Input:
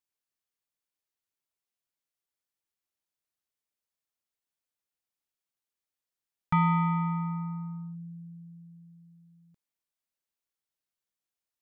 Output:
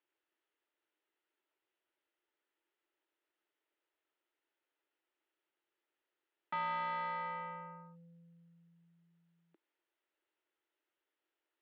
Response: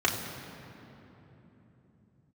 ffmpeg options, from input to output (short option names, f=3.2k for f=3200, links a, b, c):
-filter_complex "[0:a]asplit=2[a][b];[b]highpass=f=720:p=1,volume=29dB,asoftclip=type=tanh:threshold=-18.5dB[c];[a][c]amix=inputs=2:normalize=0,lowpass=f=1.1k:p=1,volume=-6dB,highpass=f=330:w=0.5412,highpass=f=330:w=1.3066,equalizer=f=330:t=q:w=4:g=8,equalizer=f=510:t=q:w=4:g=-5,equalizer=f=730:t=q:w=4:g=-9,equalizer=f=1.1k:t=q:w=4:g=-10,equalizer=f=1.6k:t=q:w=4:g=-4,equalizer=f=2.3k:t=q:w=4:g=-6,lowpass=f=3k:w=0.5412,lowpass=f=3k:w=1.3066,volume=-4dB"